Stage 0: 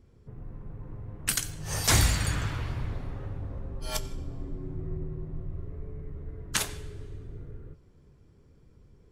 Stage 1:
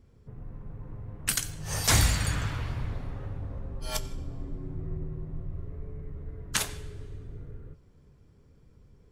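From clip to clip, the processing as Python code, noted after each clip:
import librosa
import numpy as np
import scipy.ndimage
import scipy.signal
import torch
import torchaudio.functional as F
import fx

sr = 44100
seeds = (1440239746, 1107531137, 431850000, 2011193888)

y = fx.peak_eq(x, sr, hz=350.0, db=-4.0, octaves=0.32)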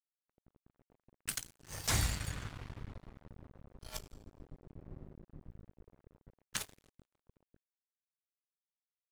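y = fx.comb_fb(x, sr, f0_hz=190.0, decay_s=0.97, harmonics='all', damping=0.0, mix_pct=50)
y = np.sign(y) * np.maximum(np.abs(y) - 10.0 ** (-39.5 / 20.0), 0.0)
y = y * librosa.db_to_amplitude(-2.5)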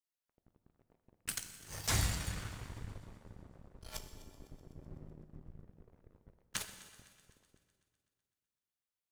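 y = fx.echo_heads(x, sr, ms=126, heads='first and second', feedback_pct=58, wet_db=-22.5)
y = fx.rev_plate(y, sr, seeds[0], rt60_s=1.8, hf_ratio=0.9, predelay_ms=0, drr_db=9.0)
y = y * librosa.db_to_amplitude(-1.0)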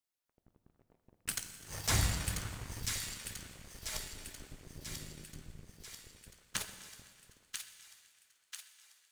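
y = fx.echo_wet_highpass(x, sr, ms=990, feedback_pct=57, hz=1800.0, wet_db=-4.0)
y = y * librosa.db_to_amplitude(2.0)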